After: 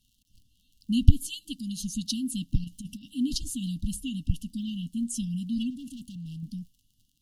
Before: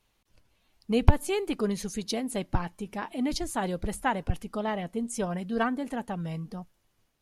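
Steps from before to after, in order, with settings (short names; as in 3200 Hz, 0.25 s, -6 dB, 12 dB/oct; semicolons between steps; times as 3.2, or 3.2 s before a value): 1.26–1.8 low shelf 410 Hz -8 dB; 2.64–3.08 negative-ratio compressor -37 dBFS, ratio -0.5; crackle 55/s -51 dBFS; 5.7–6.43 hard clip -39 dBFS, distortion -17 dB; brick-wall FIR band-stop 300–2700 Hz; gain +2.5 dB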